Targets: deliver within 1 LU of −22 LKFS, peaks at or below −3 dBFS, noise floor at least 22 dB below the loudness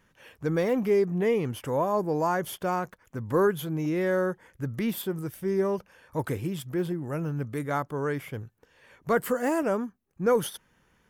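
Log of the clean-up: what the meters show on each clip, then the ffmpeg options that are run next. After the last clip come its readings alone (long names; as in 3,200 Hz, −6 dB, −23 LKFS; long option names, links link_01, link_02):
integrated loudness −28.5 LKFS; sample peak −15.0 dBFS; target loudness −22.0 LKFS
→ -af "volume=6.5dB"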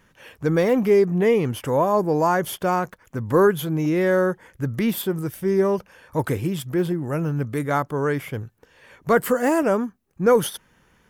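integrated loudness −22.0 LKFS; sample peak −8.5 dBFS; background noise floor −60 dBFS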